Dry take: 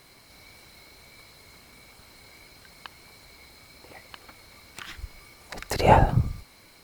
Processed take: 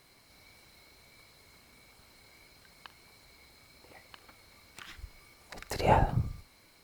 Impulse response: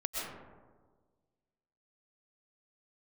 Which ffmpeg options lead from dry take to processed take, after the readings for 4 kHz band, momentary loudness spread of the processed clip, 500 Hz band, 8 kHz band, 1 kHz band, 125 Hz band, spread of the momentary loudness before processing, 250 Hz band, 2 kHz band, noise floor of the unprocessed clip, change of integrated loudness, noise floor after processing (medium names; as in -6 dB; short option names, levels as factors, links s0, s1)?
-7.5 dB, 22 LU, -7.5 dB, -7.5 dB, -7.5 dB, -7.5 dB, 22 LU, -7.5 dB, -7.5 dB, -54 dBFS, -7.5 dB, -62 dBFS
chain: -filter_complex "[0:a]asplit=2[s0][s1];[1:a]atrim=start_sample=2205,atrim=end_sample=4410,adelay=44[s2];[s1][s2]afir=irnorm=-1:irlink=0,volume=0.178[s3];[s0][s3]amix=inputs=2:normalize=0,volume=0.422"